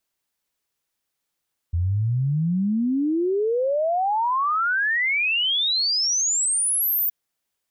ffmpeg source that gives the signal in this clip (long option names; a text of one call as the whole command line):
ffmpeg -f lavfi -i "aevalsrc='0.112*clip(min(t,5.37-t)/0.01,0,1)*sin(2*PI*82*5.37/log(15000/82)*(exp(log(15000/82)*t/5.37)-1))':duration=5.37:sample_rate=44100" out.wav